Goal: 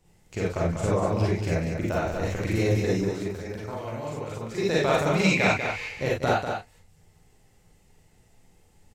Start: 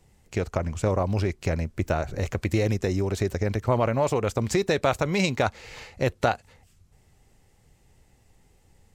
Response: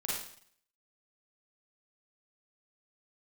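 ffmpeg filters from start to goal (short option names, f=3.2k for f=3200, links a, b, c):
-filter_complex "[0:a]asettb=1/sr,asplit=3[a][b][c];[a]atrim=end=3.034[d];[b]atrim=start=3.03:end=4.58,asetpts=PTS-STARTPTS,afade=t=in:d=0.004:c=qsin,afade=t=out:st=1.546:d=0.004:c=qsin,acrossover=split=270|3600[e][f][g];[e]acompressor=threshold=-37dB:ratio=4[h];[f]acompressor=threshold=-35dB:ratio=4[i];[g]acompressor=threshold=-52dB:ratio=4[j];[h][i][j]amix=inputs=3:normalize=0[k];[c]atrim=start=4.576[l];[d][k]acrossfade=d=0.004:c1=hsin:c2=qsin[m];[m][l]acrossfade=d=0.004:c1=qsin:c2=hsin,asettb=1/sr,asplit=3[n][o][p];[n]atrim=end=5.264[q];[o]atrim=start=5.26:end=5.86,asetpts=PTS-STARTPTS,afade=t=in:d=0.004:c=qsin,afade=t=out:st=0.596:d=0.004:c=qsin,equalizer=f=2.3k:w=3:g=14.5[r];[p]atrim=start=5.856[s];[q][r]acrossfade=d=0.004:c1=hsin:c2=qsin[t];[t][s]acrossfade=d=0.004:c1=qsin:c2=hsin,aecho=1:1:193:0.473[u];[1:a]atrim=start_sample=2205,atrim=end_sample=4410[v];[u][v]afir=irnorm=-1:irlink=0,volume=-2.5dB"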